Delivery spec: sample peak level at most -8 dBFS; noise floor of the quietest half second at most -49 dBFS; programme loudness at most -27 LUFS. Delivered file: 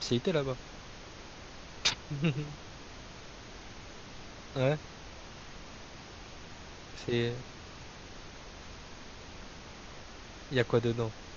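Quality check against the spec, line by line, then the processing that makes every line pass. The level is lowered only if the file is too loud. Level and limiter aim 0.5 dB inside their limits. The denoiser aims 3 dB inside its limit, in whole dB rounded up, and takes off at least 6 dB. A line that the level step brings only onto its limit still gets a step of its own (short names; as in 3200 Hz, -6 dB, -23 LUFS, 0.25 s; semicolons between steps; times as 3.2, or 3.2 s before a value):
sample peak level -12.0 dBFS: OK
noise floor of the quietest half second -48 dBFS: fail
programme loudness -33.0 LUFS: OK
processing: denoiser 6 dB, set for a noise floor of -48 dBFS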